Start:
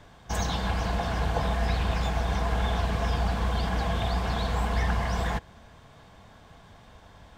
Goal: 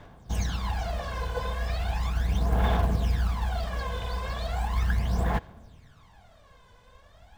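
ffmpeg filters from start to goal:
-af "aphaser=in_gain=1:out_gain=1:delay=2:decay=0.7:speed=0.37:type=sinusoidal,acrusher=bits=8:mode=log:mix=0:aa=0.000001,volume=-7dB"

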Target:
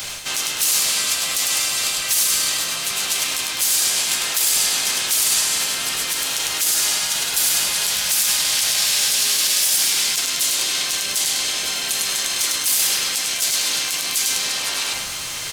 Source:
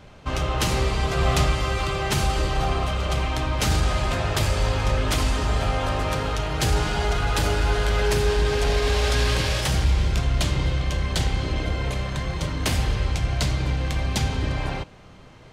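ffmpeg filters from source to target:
-filter_complex "[0:a]acrossover=split=100|680[a][b][c];[a]acompressor=threshold=-32dB:ratio=4[d];[b]acompressor=threshold=-30dB:ratio=4[e];[c]acompressor=threshold=-35dB:ratio=4[f];[d][e][f]amix=inputs=3:normalize=0,tiltshelf=f=830:g=-4.5,aecho=1:1:102|204|306|408:0.596|0.185|0.0572|0.0177,areverse,acompressor=threshold=-36dB:ratio=20,areverse,highshelf=f=5.9k:g=9.5,bandreject=f=50:t=h:w=6,bandreject=f=100:t=h:w=6,bandreject=f=150:t=h:w=6,bandreject=f=200:t=h:w=6,bandreject=f=250:t=h:w=6,afftfilt=real='re*lt(hypot(re,im),0.0316)':imag='im*lt(hypot(re,im),0.0316)':win_size=1024:overlap=0.75,crystalizer=i=9.5:c=0,alimiter=limit=-14.5dB:level=0:latency=1:release=35,asplit=4[g][h][i][j];[h]asetrate=29433,aresample=44100,atempo=1.49831,volume=-14dB[k];[i]asetrate=55563,aresample=44100,atempo=0.793701,volume=-10dB[l];[j]asetrate=58866,aresample=44100,atempo=0.749154,volume=-13dB[m];[g][k][l][m]amix=inputs=4:normalize=0,volume=6.5dB"

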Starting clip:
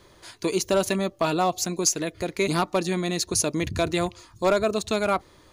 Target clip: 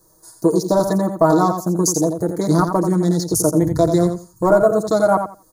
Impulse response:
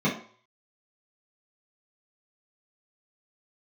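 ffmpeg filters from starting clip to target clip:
-filter_complex "[0:a]asplit=2[a][b];[b]acompressor=threshold=-35dB:ratio=12,volume=-2dB[c];[a][c]amix=inputs=2:normalize=0,aemphasis=mode=production:type=75fm,acrossover=split=3200[d][e];[e]acompressor=threshold=-24dB:ratio=4:attack=1:release=60[f];[d][f]amix=inputs=2:normalize=0,aecho=1:1:6.3:0.8,afwtdn=0.0355,asuperstop=centerf=2700:order=4:qfactor=0.53,asplit=2[g][h];[h]aecho=0:1:86|172|258:0.422|0.0759|0.0137[i];[g][i]amix=inputs=2:normalize=0,volume=6dB"

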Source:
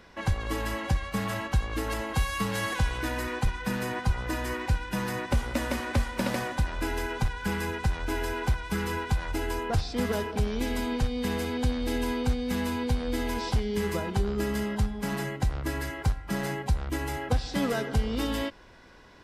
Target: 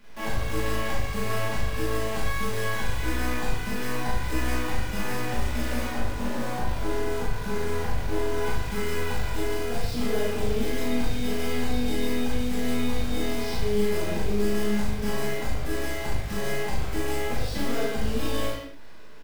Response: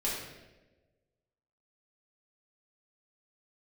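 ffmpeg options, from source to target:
-filter_complex "[0:a]asettb=1/sr,asplit=3[a][b][c];[a]atrim=end=5.864[d];[b]atrim=start=5.86:end=8.4,asetpts=PTS-STARTPTS,afade=t=in:d=0.004:c=qsin,afade=t=out:st=2.536:d=0.004:c=qsin,lowpass=1.5k[e];[c]atrim=start=8.396[f];[d][e]acrossfade=d=0.004:c1=hsin:c2=qsin[g];[g][f]acrossfade=d=0.004:c1=qsin:c2=hsin,alimiter=limit=-23.5dB:level=0:latency=1:release=439,acrusher=bits=8:dc=4:mix=0:aa=0.000001,aeval=exprs='(tanh(28.2*val(0)+0.5)-tanh(0.5))/28.2':c=same,asplit=2[h][i];[i]adelay=38,volume=-2dB[j];[h][j]amix=inputs=2:normalize=0[k];[1:a]atrim=start_sample=2205,afade=t=out:st=0.3:d=0.01,atrim=end_sample=13671[l];[k][l]afir=irnorm=-1:irlink=0"

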